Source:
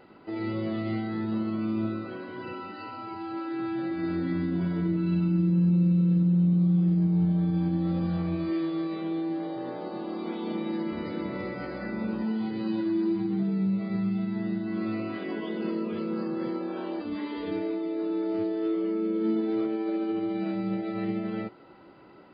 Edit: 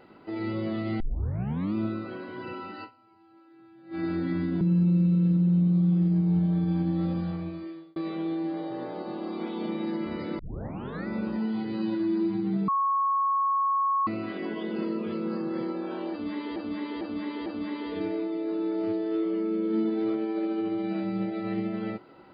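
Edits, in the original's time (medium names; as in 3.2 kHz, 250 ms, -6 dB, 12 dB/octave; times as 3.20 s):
1.00 s: tape start 0.74 s
2.84–3.95 s: dip -22.5 dB, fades 0.30 s exponential
4.61–5.47 s: delete
7.89–8.82 s: fade out
11.25 s: tape start 0.68 s
13.54–14.93 s: bleep 1.1 kHz -22 dBFS
16.97–17.42 s: loop, 4 plays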